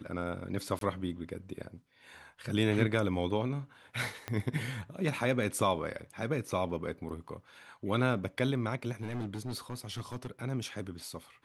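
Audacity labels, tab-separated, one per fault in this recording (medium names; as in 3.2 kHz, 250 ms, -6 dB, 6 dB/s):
0.790000	0.810000	dropout 22 ms
4.280000	4.280000	pop -21 dBFS
9.020000	10.270000	clipped -32.5 dBFS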